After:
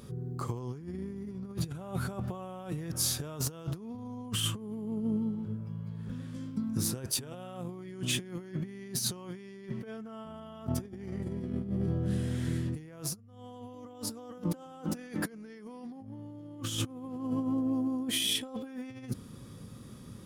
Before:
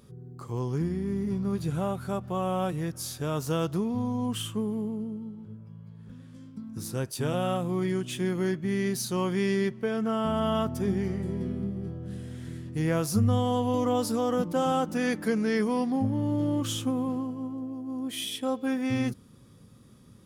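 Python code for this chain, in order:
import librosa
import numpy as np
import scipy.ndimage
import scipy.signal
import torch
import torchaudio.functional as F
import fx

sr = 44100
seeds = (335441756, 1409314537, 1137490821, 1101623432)

y = fx.over_compress(x, sr, threshold_db=-35.0, ratio=-0.5)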